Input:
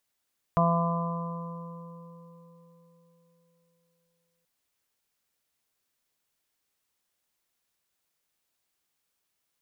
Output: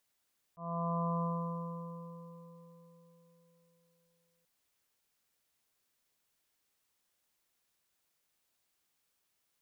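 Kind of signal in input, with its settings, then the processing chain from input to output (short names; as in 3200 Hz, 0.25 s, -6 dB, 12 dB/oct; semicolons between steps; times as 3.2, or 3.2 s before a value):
additive tone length 3.88 s, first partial 169 Hz, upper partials -17/-10.5/-1.5/-18/-2/-7 dB, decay 3.89 s, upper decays 0.62/4.89/1.89/2.12/3.13/2.65 s, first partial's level -22.5 dB
auto swell 0.669 s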